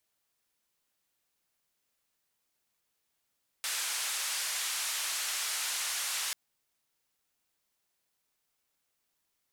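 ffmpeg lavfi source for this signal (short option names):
-f lavfi -i "anoisesrc=c=white:d=2.69:r=44100:seed=1,highpass=f=1100,lowpass=f=10000,volume=-25.3dB"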